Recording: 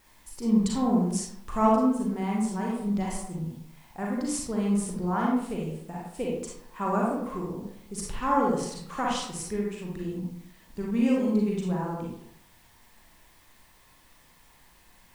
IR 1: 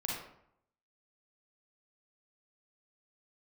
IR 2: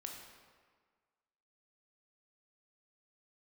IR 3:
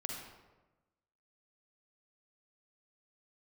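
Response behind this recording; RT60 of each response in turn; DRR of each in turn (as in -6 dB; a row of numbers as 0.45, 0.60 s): 1; 0.70, 1.6, 1.1 s; -3.5, 1.0, -0.5 dB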